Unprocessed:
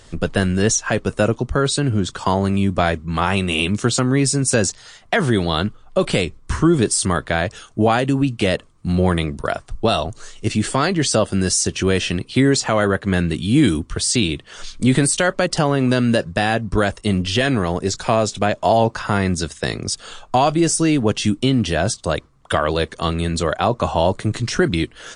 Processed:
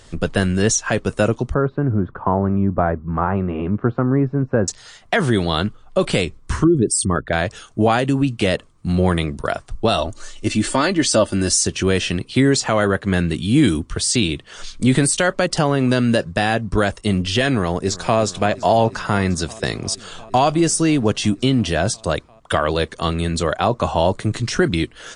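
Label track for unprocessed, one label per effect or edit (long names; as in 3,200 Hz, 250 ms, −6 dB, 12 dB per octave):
1.540000	4.680000	low-pass filter 1,400 Hz 24 dB per octave
6.640000	7.330000	spectral envelope exaggerated exponent 2
9.980000	11.660000	comb filter 3.4 ms, depth 56%
17.520000	18.190000	delay throw 350 ms, feedback 85%, level −17.5 dB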